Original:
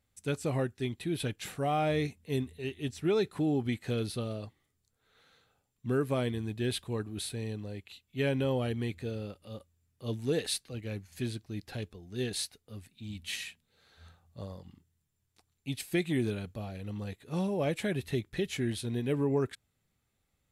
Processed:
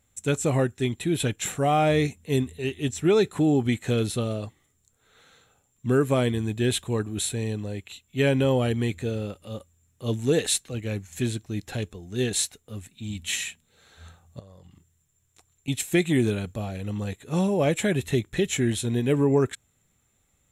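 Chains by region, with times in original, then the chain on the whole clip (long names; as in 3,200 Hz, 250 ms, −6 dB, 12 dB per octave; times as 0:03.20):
0:14.39–0:15.68: parametric band 240 Hz −11.5 dB 0.31 octaves + notch filter 860 Hz, Q 16 + downward compressor 8 to 1, threshold −54 dBFS
whole clip: parametric band 7,300 Hz +12 dB 0.24 octaves; notch filter 4,700 Hz, Q 5.1; level +8 dB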